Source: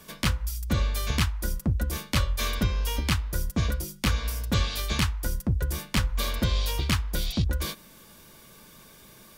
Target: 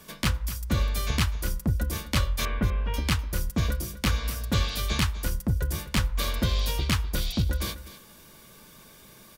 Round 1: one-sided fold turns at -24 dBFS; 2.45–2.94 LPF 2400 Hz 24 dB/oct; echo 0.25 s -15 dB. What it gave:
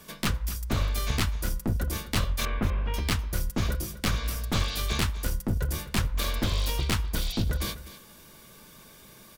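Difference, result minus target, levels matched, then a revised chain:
one-sided fold: distortion +23 dB
one-sided fold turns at -15.5 dBFS; 2.45–2.94 LPF 2400 Hz 24 dB/oct; echo 0.25 s -15 dB

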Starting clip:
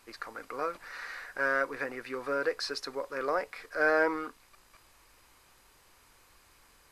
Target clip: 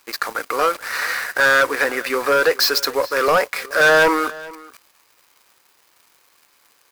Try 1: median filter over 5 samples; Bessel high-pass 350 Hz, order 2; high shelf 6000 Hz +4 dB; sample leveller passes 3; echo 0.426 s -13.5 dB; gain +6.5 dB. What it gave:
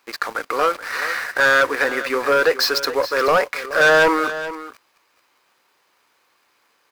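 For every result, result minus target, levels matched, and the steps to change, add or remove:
echo-to-direct +7 dB; 8000 Hz band -3.0 dB
change: echo 0.426 s -20.5 dB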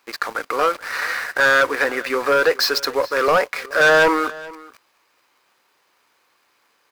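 8000 Hz band -3.5 dB
change: high shelf 6000 Hz +13.5 dB

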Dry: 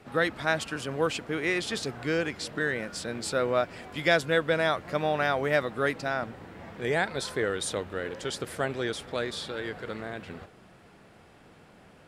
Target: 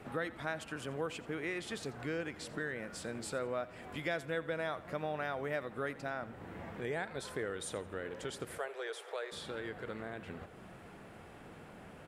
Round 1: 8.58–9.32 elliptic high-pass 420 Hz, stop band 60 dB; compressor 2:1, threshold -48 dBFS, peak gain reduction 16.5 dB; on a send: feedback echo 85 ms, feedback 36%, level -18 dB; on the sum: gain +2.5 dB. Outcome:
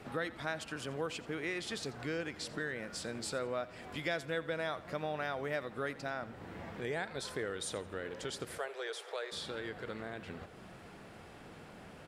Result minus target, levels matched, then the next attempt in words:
4000 Hz band +3.5 dB
8.58–9.32 elliptic high-pass 420 Hz, stop band 60 dB; compressor 2:1, threshold -48 dBFS, peak gain reduction 16.5 dB; bell 4800 Hz -6.5 dB 1.1 oct; on a send: feedback echo 85 ms, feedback 36%, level -18 dB; on the sum: gain +2.5 dB

